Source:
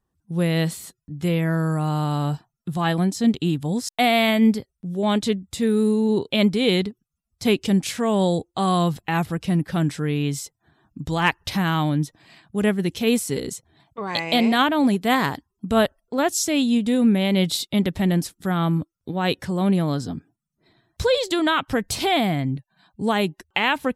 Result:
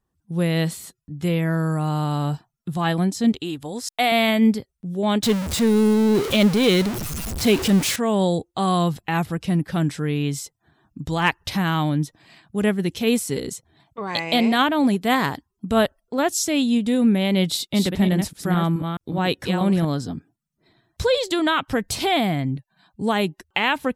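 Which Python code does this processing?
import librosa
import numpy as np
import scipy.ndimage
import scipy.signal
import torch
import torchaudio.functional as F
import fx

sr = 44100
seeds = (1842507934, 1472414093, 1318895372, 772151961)

y = fx.peak_eq(x, sr, hz=170.0, db=-13.5, octaves=1.1, at=(3.32, 4.12))
y = fx.zero_step(y, sr, step_db=-21.5, at=(5.23, 7.96))
y = fx.reverse_delay(y, sr, ms=213, wet_db=-5.0, at=(17.48, 19.85))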